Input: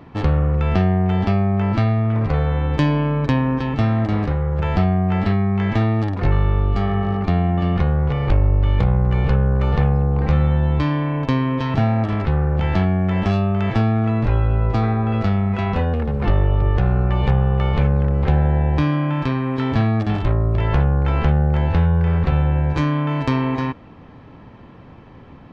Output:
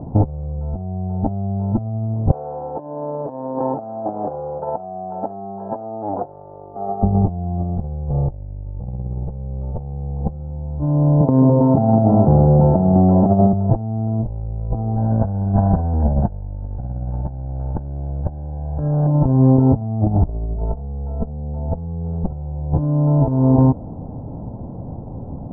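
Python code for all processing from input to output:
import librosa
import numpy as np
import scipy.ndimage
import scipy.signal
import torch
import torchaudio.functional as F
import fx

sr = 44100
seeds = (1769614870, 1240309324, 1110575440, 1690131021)

y = fx.chain(x, sr, fx.over_compress(threshold_db=-22.0, ratio=-0.5),
    fx.highpass(hz=610.0, slope=12),
    fx.air_absorb(metres=120.0), at=(2.31, 7.03))
y = fx.chain(y, sr, fx.highpass(hz=170.0, slope=12),
    fx.echo_single(ms=208, db=-7.5), at=(11.21, 13.53))
y = fx.chain(y, sr, fx.lower_of_two(delay_ms=1.2),
    fx.peak_eq(hz=1600.0, db=14.0, octaves=0.45), at=(14.96, 19.07))
y = fx.chain(y, sr, fx.high_shelf(hz=3300.0, db=-9.0),
    fx.comb(ms=4.4, depth=0.75), at=(20.26, 22.26))
y = scipy.signal.sosfilt(scipy.signal.cheby2(4, 50, 1900.0, 'lowpass', fs=sr, output='sos'), y)
y = y + 0.36 * np.pad(y, (int(1.3 * sr / 1000.0), 0))[:len(y)]
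y = fx.over_compress(y, sr, threshold_db=-22.0, ratio=-0.5)
y = y * librosa.db_to_amplitude(5.0)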